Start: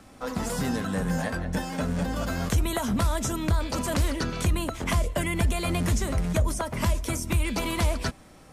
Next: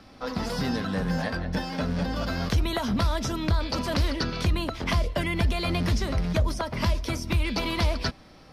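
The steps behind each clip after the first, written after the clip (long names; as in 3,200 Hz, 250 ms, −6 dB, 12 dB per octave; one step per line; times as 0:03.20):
high shelf with overshoot 6,100 Hz −7.5 dB, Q 3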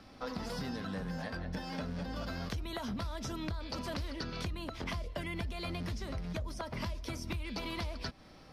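downward compressor, threshold −31 dBFS, peak gain reduction 11.5 dB
level −4.5 dB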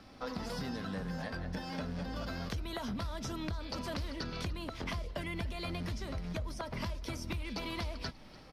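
echo with shifted repeats 293 ms, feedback 60%, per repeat −43 Hz, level −19.5 dB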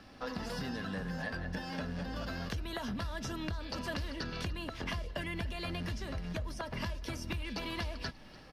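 hollow resonant body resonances 1,700/2,800 Hz, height 12 dB, ringing for 45 ms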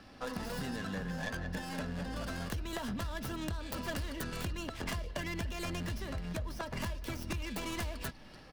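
stylus tracing distortion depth 0.3 ms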